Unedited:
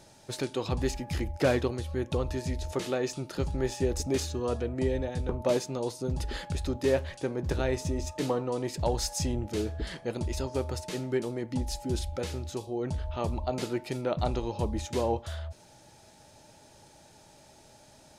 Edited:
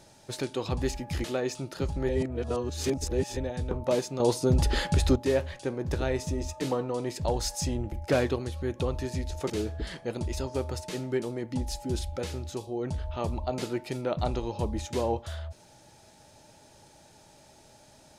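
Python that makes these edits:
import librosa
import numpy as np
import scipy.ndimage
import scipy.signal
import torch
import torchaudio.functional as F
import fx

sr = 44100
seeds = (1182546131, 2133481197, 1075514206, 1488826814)

y = fx.edit(x, sr, fx.move(start_s=1.24, length_s=1.58, to_s=9.5),
    fx.reverse_span(start_s=3.67, length_s=1.28),
    fx.clip_gain(start_s=5.78, length_s=0.96, db=8.5), tone=tone)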